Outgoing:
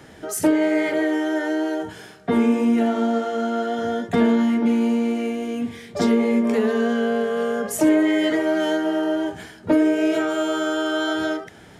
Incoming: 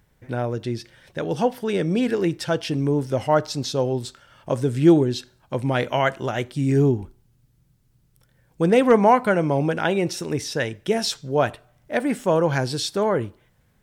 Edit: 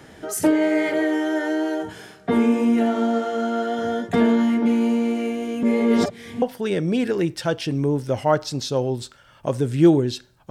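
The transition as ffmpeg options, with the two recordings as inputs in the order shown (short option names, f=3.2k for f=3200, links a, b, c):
-filter_complex "[0:a]apad=whole_dur=10.5,atrim=end=10.5,asplit=2[a][b];[a]atrim=end=5.632[c];[b]atrim=start=5.628:end=6.422,asetpts=PTS-STARTPTS,areverse[d];[1:a]atrim=start=1.448:end=5.53[e];[c][d]acrossfade=d=0.004:c1=hsin:c2=hsin[f];[f][e]acrossfade=d=0.004:c1=hsin:c2=hsin"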